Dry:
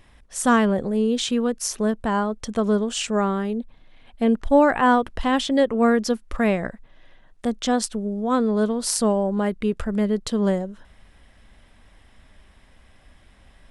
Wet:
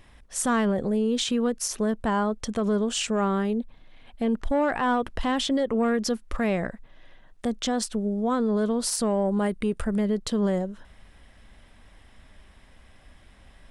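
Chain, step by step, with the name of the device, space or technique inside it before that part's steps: 9.26–9.99 s: peaking EQ 9.1 kHz +12 dB 0.21 oct; soft clipper into limiter (saturation -9.5 dBFS, distortion -22 dB; peak limiter -17.5 dBFS, peak gain reduction 7.5 dB)

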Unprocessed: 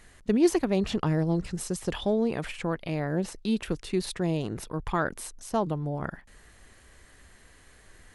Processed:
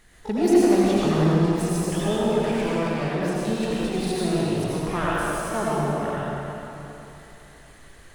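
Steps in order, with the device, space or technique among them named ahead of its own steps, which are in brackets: shimmer-style reverb (harmony voices +12 st -12 dB; reverberation RT60 3.3 s, pre-delay 75 ms, DRR -7.5 dB); trim -2.5 dB

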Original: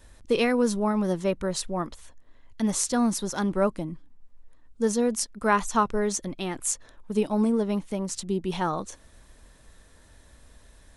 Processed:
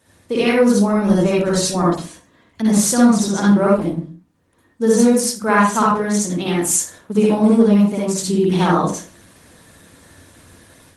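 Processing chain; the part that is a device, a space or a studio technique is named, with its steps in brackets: 2.97–3.41 s: low-pass 8.9 kHz 24 dB/octave; far-field microphone of a smart speaker (reverberation RT60 0.35 s, pre-delay 51 ms, DRR -5 dB; high-pass 100 Hz 24 dB/octave; level rider gain up to 7 dB; Opus 20 kbps 48 kHz)

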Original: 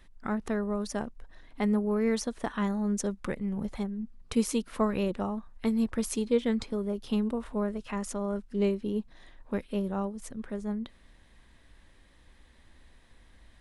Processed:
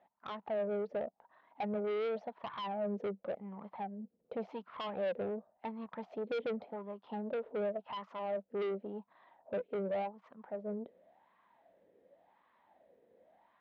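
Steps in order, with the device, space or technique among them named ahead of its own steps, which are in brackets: wah-wah guitar rig (wah-wah 0.9 Hz 450–1100 Hz, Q 7.5; valve stage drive 45 dB, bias 0.25; cabinet simulation 110–3800 Hz, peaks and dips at 190 Hz +7 dB, 650 Hz +5 dB, 1.1 kHz -7 dB, 1.6 kHz -3 dB); trim +11.5 dB

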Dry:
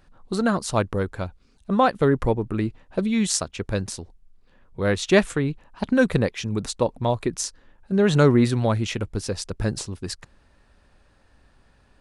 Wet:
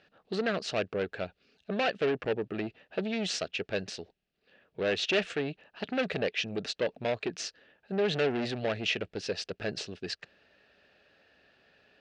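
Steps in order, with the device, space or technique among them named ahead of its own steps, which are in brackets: guitar amplifier (valve stage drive 23 dB, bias 0.25; tone controls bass -9 dB, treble +11 dB; cabinet simulation 100–4300 Hz, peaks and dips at 180 Hz +4 dB, 430 Hz +6 dB, 640 Hz +6 dB, 1 kHz -10 dB, 1.7 kHz +6 dB, 2.7 kHz +9 dB); trim -3.5 dB

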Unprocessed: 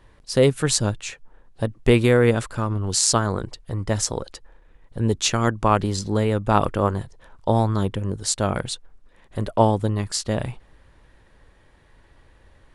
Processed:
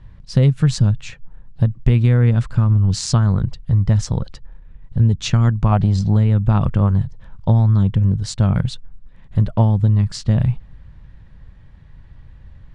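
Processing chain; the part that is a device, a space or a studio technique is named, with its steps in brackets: jukebox (low-pass 5.2 kHz 12 dB/octave; resonant low shelf 240 Hz +13.5 dB, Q 1.5; compression 4:1, threshold -10 dBFS, peak gain reduction 8.5 dB); 5.72–6.16 s: peaking EQ 710 Hz +11 dB 0.59 oct; trim -1 dB

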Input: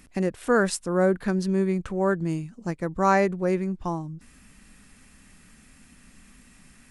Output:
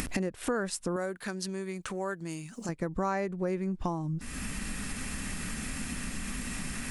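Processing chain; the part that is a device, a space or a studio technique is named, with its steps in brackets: upward and downward compression (upward compressor, threshold -24 dBFS; compression 5:1, threshold -31 dBFS, peak gain reduction 14.5 dB); 0.96–2.69 s: tilt EQ +3 dB/octave; trim +2.5 dB

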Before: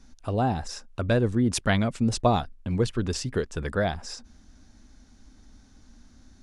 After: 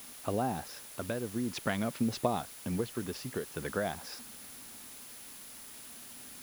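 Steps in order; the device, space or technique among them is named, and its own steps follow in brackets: medium wave at night (band-pass 160–3700 Hz; compression, threshold -26 dBFS, peak gain reduction 10 dB; tremolo 0.46 Hz, depth 48%; whistle 10 kHz -52 dBFS; white noise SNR 13 dB)

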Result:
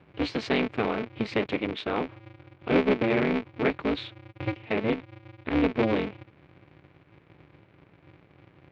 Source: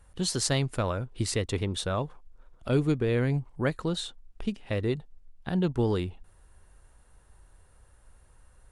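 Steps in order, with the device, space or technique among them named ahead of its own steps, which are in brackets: 1.53–1.97 s: high-pass 140 Hz 12 dB/octave; ring modulator pedal into a guitar cabinet (polarity switched at an audio rate 110 Hz; cabinet simulation 94–3600 Hz, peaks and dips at 290 Hz +5 dB, 430 Hz +5 dB, 2.3 kHz +9 dB)

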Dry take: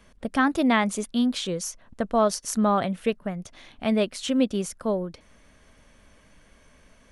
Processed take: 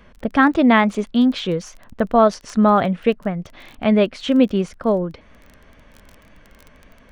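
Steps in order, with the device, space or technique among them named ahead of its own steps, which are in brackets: lo-fi chain (low-pass 3 kHz 12 dB/octave; wow and flutter; crackle 22 per s -39 dBFS); trim +7.5 dB

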